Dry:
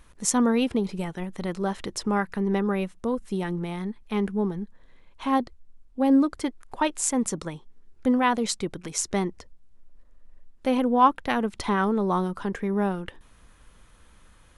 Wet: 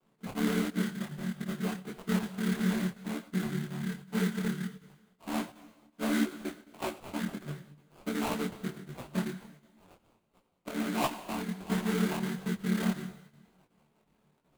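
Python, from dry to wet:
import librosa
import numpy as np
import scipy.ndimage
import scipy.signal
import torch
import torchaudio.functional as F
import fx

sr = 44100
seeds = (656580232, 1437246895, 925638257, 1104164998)

y = fx.chord_vocoder(x, sr, chord='major triad', root=50)
y = fx.high_shelf(y, sr, hz=2800.0, db=8.5)
y = fx.echo_wet_highpass(y, sr, ms=923, feedback_pct=69, hz=5200.0, wet_db=-10.5)
y = fx.sample_hold(y, sr, seeds[0], rate_hz=1800.0, jitter_pct=20)
y = fx.peak_eq(y, sr, hz=5400.0, db=-5.0, octaves=0.36)
y = fx.rev_plate(y, sr, seeds[1], rt60_s=1.3, hf_ratio=1.0, predelay_ms=0, drr_db=11.0)
y = fx.chopper(y, sr, hz=2.7, depth_pct=60, duty_pct=85)
y = fx.detune_double(y, sr, cents=50)
y = y * librosa.db_to_amplitude(-2.0)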